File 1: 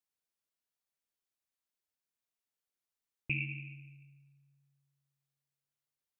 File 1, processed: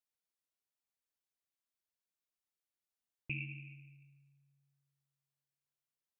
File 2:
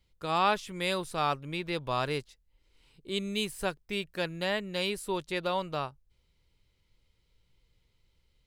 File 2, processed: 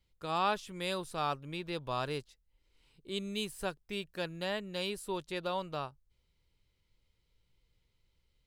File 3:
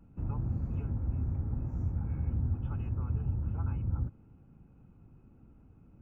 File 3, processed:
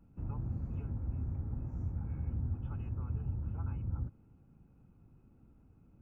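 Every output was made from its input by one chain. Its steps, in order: dynamic bell 2.1 kHz, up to -5 dB, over -51 dBFS, Q 4; trim -4.5 dB

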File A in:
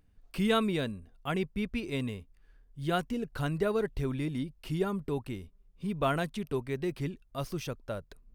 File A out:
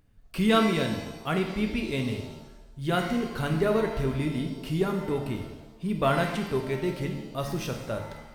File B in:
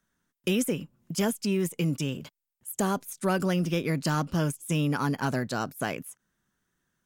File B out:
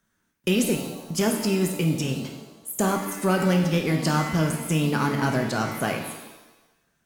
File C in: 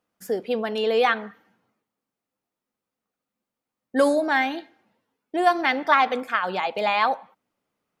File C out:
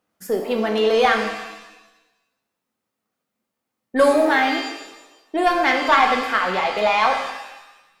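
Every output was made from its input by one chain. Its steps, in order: single-diode clipper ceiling -10.5 dBFS; pitch-shifted reverb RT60 1 s, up +7 st, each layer -8 dB, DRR 3 dB; trim +3.5 dB

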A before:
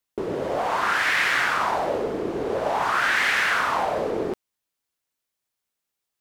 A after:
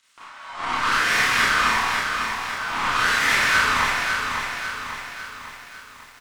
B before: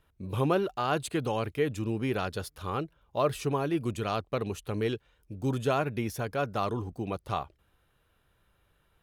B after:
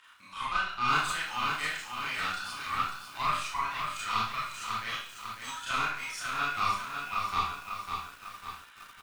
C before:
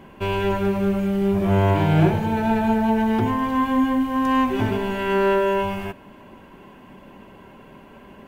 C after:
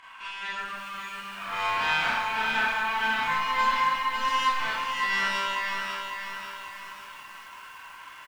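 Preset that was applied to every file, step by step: spectral noise reduction 9 dB; elliptic band-pass 1.1–9 kHz, stop band 40 dB; treble shelf 4.4 kHz -6 dB; upward compressor, threshold -41 dBFS; crackle 50 per s -54 dBFS; valve stage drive 29 dB, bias 0.75; tremolo saw up 4.2 Hz, depth 40%; doubling 27 ms -11 dB; Schroeder reverb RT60 0.52 s, combs from 25 ms, DRR -7.5 dB; bit-crushed delay 549 ms, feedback 55%, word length 9-bit, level -5.5 dB; trim +5 dB

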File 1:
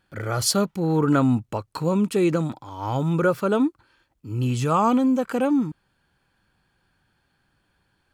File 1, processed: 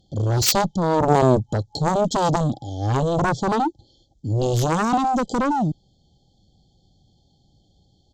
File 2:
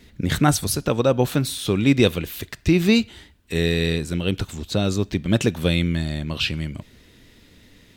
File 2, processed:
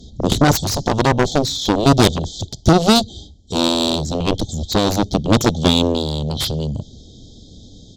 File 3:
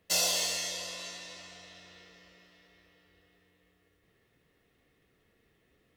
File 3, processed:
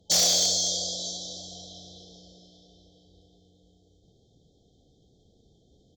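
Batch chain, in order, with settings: FFT band-reject 850–3100 Hz; resampled via 16 kHz; in parallel at -7 dB: hard clipper -18 dBFS; on the sum: tone controls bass +6 dB, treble +6 dB; Chebyshev shaper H 7 -8 dB, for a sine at -1 dBFS; trim -2 dB

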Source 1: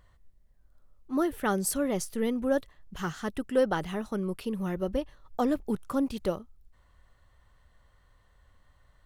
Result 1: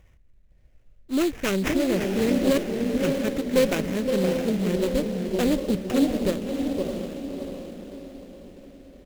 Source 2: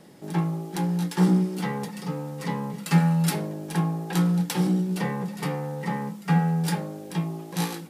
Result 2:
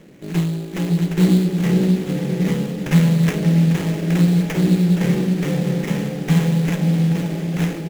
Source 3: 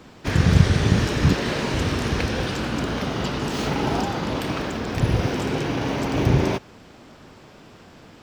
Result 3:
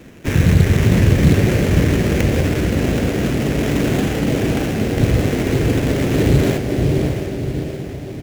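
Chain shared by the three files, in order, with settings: sample-rate reducer 4.1 kHz, jitter 20%; echo from a far wall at 89 m, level -6 dB; in parallel at -10.5 dB: sine folder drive 9 dB, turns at 0 dBFS; on the sum: Butterworth band-stop 1.1 kHz, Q 0.91; on a send: echo that smears into a reverb 656 ms, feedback 45%, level -5 dB; on the sum: sliding maximum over 9 samples; trim -1.5 dB

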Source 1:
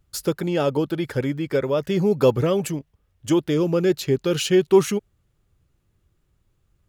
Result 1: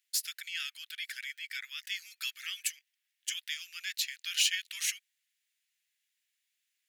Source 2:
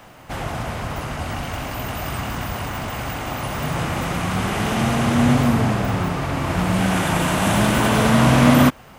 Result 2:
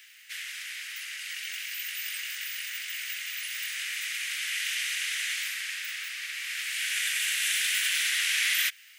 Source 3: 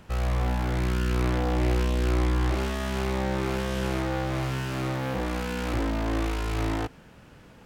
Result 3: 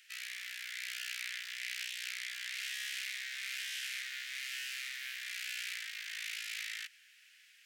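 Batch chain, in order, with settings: steep high-pass 1.8 kHz 48 dB/octave

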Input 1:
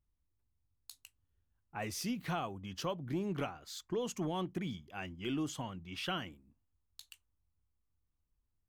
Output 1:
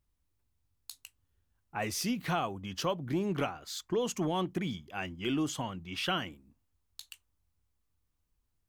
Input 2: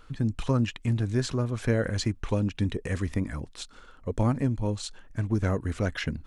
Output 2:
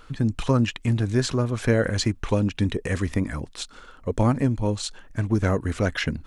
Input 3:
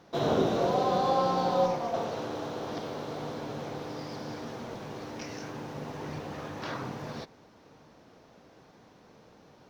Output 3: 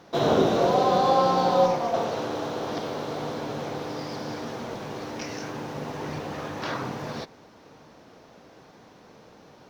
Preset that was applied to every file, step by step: bass shelf 200 Hz -3.5 dB; trim +6 dB

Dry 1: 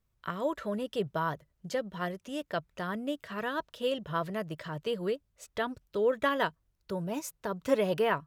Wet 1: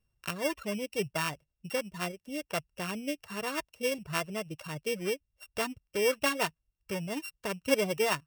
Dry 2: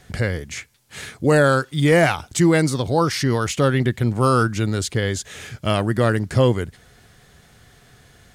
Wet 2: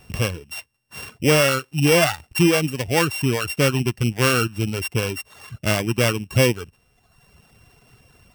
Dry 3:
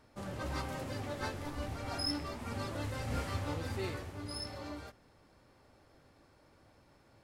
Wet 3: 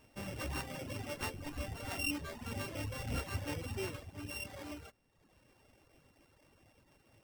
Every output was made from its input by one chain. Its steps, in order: sorted samples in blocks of 16 samples; reverb removal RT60 0.96 s

